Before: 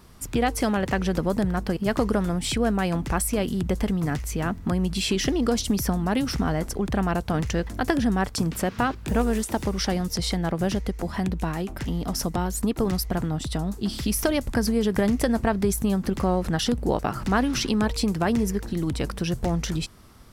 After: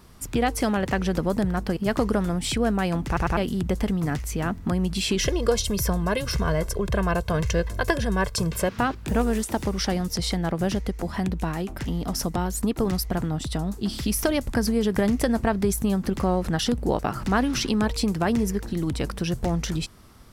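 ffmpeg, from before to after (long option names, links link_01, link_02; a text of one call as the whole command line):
ffmpeg -i in.wav -filter_complex "[0:a]asettb=1/sr,asplit=3[link_01][link_02][link_03];[link_01]atrim=end=5.184[link_04];[link_02]atrim=start=5.18:end=8.69,asetpts=PTS-STARTPTS,afade=type=in:duration=0.004:curve=qsin,afade=type=out:start_time=3.506:duration=0.004:curve=qsin,aecho=1:1:1.9:0.79,atrim=end_sample=154791[link_05];[link_03]atrim=start=8.686[link_06];[link_04][link_05]acrossfade=duration=0.004:curve1=hsin:curve2=qsin[link_07];[link_07][link_06]acrossfade=duration=0.004:curve1=qsin:curve2=hsin,asplit=4[link_08][link_09][link_10][link_11];[link_08]atrim=end=3.172[link_12];[link_09]atrim=start=3.068:end=3.172[link_13];[link_10]atrim=start=3.068:end=3.172[link_14];[link_11]atrim=start=3.368[link_15];[link_12][link_13]acrossfade=duration=0.004:curve1=hsin:curve2=hsin[link_16];[link_16][link_14]acrossfade=duration=0.004:curve1=hsin:curve2=hsin[link_17];[link_17][link_15]acrossfade=duration=0.004:curve1=hsin:curve2=hsin" out.wav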